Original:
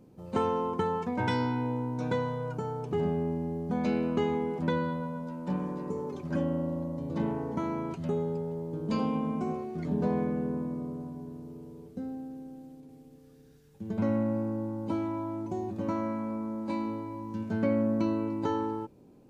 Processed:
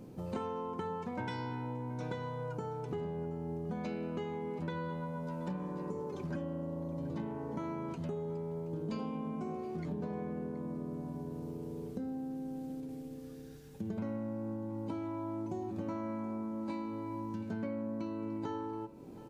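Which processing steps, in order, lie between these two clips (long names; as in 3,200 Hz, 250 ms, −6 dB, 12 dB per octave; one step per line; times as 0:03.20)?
hum removal 49.74 Hz, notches 27
downward compressor 6 to 1, threshold −44 dBFS, peak gain reduction 19 dB
on a send: single-tap delay 725 ms −17 dB
on the sum: level +7 dB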